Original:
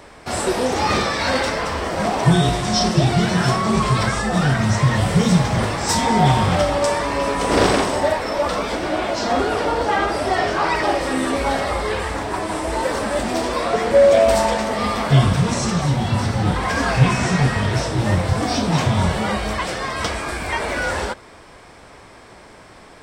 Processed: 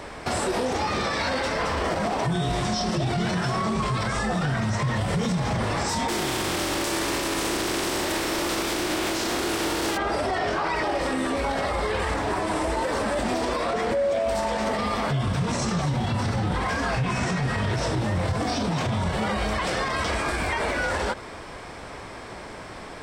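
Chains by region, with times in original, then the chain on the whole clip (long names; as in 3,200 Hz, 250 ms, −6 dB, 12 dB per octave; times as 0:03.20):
0:06.08–0:09.96: compressing power law on the bin magnitudes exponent 0.37 + parametric band 340 Hz +14.5 dB 0.34 octaves
whole clip: high-shelf EQ 7,700 Hz −5 dB; downward compressor, threshold −20 dBFS; brickwall limiter −22.5 dBFS; level +5 dB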